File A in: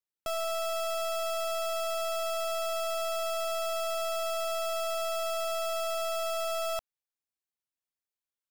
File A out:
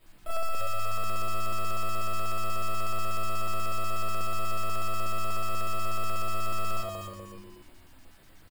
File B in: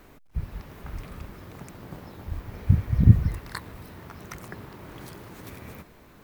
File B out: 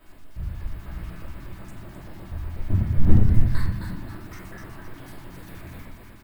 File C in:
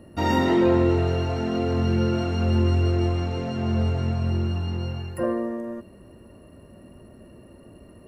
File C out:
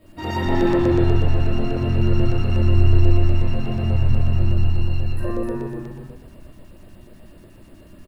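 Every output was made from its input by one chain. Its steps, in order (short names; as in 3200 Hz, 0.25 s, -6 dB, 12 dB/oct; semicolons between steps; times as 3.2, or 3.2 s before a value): one-sided fold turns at -11.5 dBFS; added noise pink -57 dBFS; frequency-shifting echo 0.263 s, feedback 37%, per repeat -100 Hz, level -5 dB; shoebox room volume 140 m³, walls mixed, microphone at 2.8 m; LFO notch square 8.2 Hz 500–6000 Hz; gain -11 dB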